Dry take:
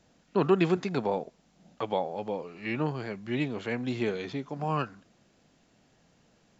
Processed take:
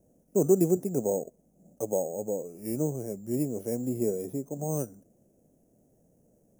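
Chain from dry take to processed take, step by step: careless resampling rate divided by 6×, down filtered, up hold; FFT filter 170 Hz 0 dB, 580 Hz +3 dB, 1.1 kHz -21 dB, 4.4 kHz -26 dB, 6.4 kHz +3 dB

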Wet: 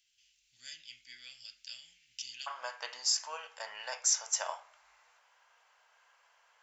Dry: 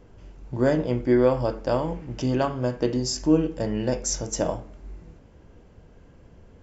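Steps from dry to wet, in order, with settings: inverse Chebyshev high-pass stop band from 1.1 kHz, stop band 50 dB, from 2.46 s stop band from 350 Hz

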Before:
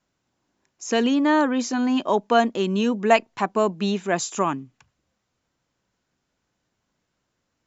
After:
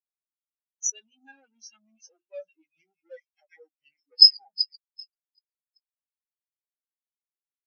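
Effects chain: pitch bend over the whole clip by -11 st starting unshifted; band-stop 3.6 kHz, Q 25; feedback echo behind a high-pass 386 ms, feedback 69%, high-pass 2.2 kHz, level -6 dB; on a send at -23.5 dB: reverberation RT60 2.3 s, pre-delay 30 ms; on the sum: rotary cabinet horn 6.7 Hz; bass shelf 79 Hz -6.5 dB; waveshaping leveller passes 5; differentiator; hum notches 50/100/150/200/250/300/350 Hz; in parallel at -2.5 dB: upward compressor, threshold -28 dBFS; on the sum: spectral contrast expander 4:1; trim +2 dB

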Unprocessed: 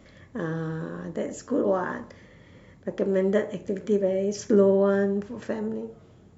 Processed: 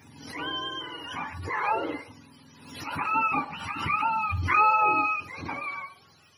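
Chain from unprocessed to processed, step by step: spectrum inverted on a logarithmic axis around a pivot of 710 Hz; swell ahead of each attack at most 62 dB/s

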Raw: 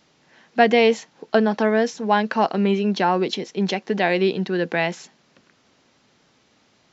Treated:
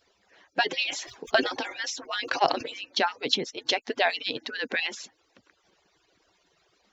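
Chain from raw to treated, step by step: harmonic-percussive separation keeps percussive; dynamic bell 4.2 kHz, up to +7 dB, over -45 dBFS, Q 0.93; 0.74–2.78 s: decay stretcher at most 97 dB/s; trim -2 dB

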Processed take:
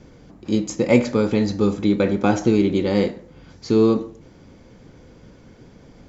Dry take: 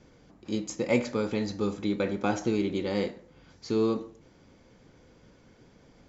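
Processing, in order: bass shelf 450 Hz +5.5 dB; trim +6.5 dB

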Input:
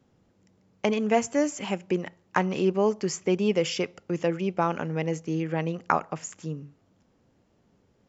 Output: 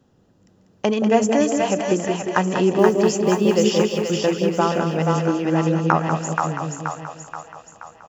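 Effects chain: band-stop 2.2 kHz, Q 5.2; feedback delay 193 ms, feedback 23%, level -8 dB; 2.78–3.71 s: modulation noise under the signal 34 dB; two-band feedback delay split 610 Hz, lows 174 ms, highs 478 ms, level -3 dB; trim +5 dB

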